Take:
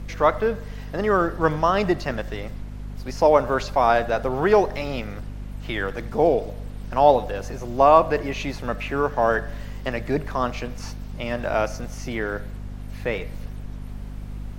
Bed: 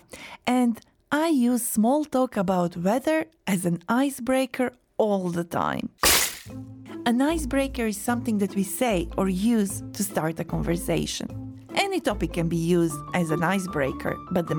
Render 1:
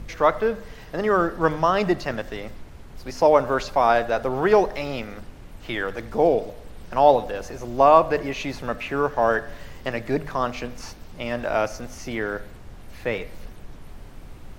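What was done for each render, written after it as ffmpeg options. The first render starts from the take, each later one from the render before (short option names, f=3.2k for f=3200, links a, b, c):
-af "bandreject=f=50:t=h:w=4,bandreject=f=100:t=h:w=4,bandreject=f=150:t=h:w=4,bandreject=f=200:t=h:w=4,bandreject=f=250:t=h:w=4"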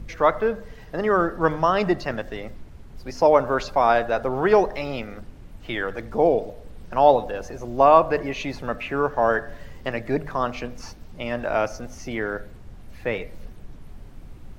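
-af "afftdn=nr=6:nf=-42"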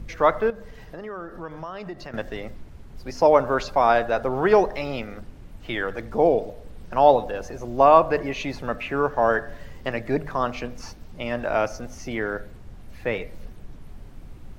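-filter_complex "[0:a]asettb=1/sr,asplit=3[a][b][c];[a]atrim=end=0.504[d];[b]atrim=start=0.5:end=2.14,asetpts=PTS-STARTPTS,afade=t=in:d=0.004:c=qsin,afade=t=out:st=1.636:d=0.004:c=qsin,acompressor=threshold=-36dB:ratio=3:attack=3.2:release=140:knee=1:detection=peak[e];[c]atrim=start=2.136[f];[d][e]acrossfade=d=0.004:c1=hsin:c2=qsin[g];[g][f]acrossfade=d=0.004:c1=qsin:c2=hsin"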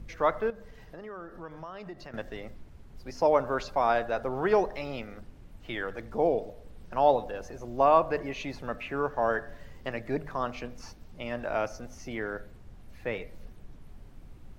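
-af "volume=-7dB"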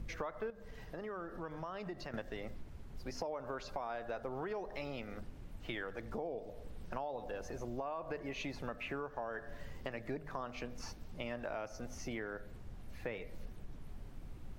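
-af "alimiter=limit=-20dB:level=0:latency=1:release=142,acompressor=threshold=-38dB:ratio=6"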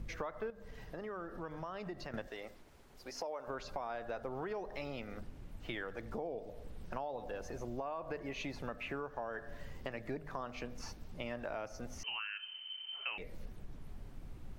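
-filter_complex "[0:a]asettb=1/sr,asplit=3[a][b][c];[a]atrim=end=2.274[d];[b]atrim=start=2.27:end=3.48,asetpts=PTS-STARTPTS,afade=t=in:d=0.004:c=qsin,afade=t=out:st=1.206:d=0.004:c=qsin,bass=f=250:g=-15,treble=f=4k:g=3[e];[c]atrim=start=3.476[f];[d][e]acrossfade=d=0.004:c1=hsin:c2=qsin[g];[g][f]acrossfade=d=0.004:c1=qsin:c2=hsin,asettb=1/sr,asplit=3[h][i][j];[h]atrim=end=12.034[k];[i]atrim=start=12.03:end=13.18,asetpts=PTS-STARTPTS,afade=t=in:d=0.004:c=qsin,afade=t=out:st=1.146:d=0.004:c=qsin,lowpass=f=2.6k:t=q:w=0.5098,lowpass=f=2.6k:t=q:w=0.6013,lowpass=f=2.6k:t=q:w=0.9,lowpass=f=2.6k:t=q:w=2.563,afreqshift=-3100[l];[j]atrim=start=13.176[m];[k][l]acrossfade=d=0.004:c1=hsin:c2=qsin[n];[n][m]acrossfade=d=0.004:c1=qsin:c2=hsin"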